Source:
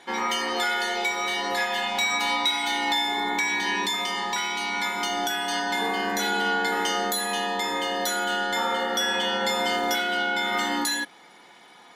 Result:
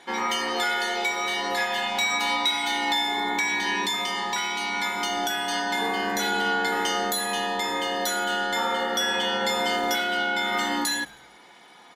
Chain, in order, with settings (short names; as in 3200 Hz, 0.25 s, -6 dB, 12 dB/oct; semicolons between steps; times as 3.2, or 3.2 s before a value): frequency-shifting echo 0.106 s, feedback 47%, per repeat -77 Hz, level -22.5 dB